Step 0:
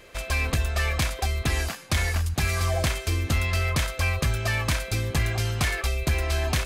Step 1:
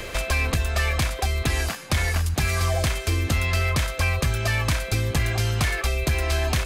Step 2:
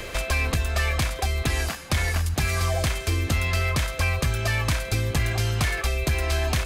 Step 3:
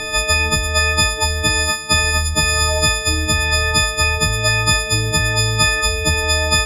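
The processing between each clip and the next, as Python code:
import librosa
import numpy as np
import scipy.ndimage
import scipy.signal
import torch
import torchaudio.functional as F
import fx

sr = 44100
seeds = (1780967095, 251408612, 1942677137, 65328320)

y1 = fx.band_squash(x, sr, depth_pct=70)
y1 = y1 * librosa.db_to_amplitude(1.5)
y2 = y1 + 10.0 ** (-23.0 / 20.0) * np.pad(y1, (int(166 * sr / 1000.0), 0))[:len(y1)]
y2 = y2 * librosa.db_to_amplitude(-1.0)
y3 = fx.freq_snap(y2, sr, grid_st=6)
y3 = fx.air_absorb(y3, sr, metres=52.0)
y3 = y3 * librosa.db_to_amplitude(5.0)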